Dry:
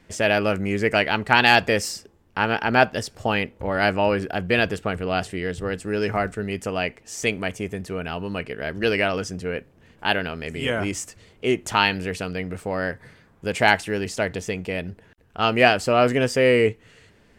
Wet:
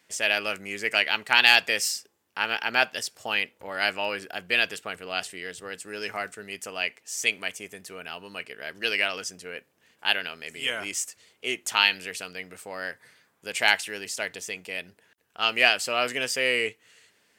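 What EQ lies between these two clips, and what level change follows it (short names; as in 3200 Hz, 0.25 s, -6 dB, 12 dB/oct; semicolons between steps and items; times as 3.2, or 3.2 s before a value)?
HPF 140 Hz 6 dB/oct; tilt +3.5 dB/oct; dynamic EQ 2800 Hz, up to +5 dB, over -29 dBFS, Q 0.99; -8.0 dB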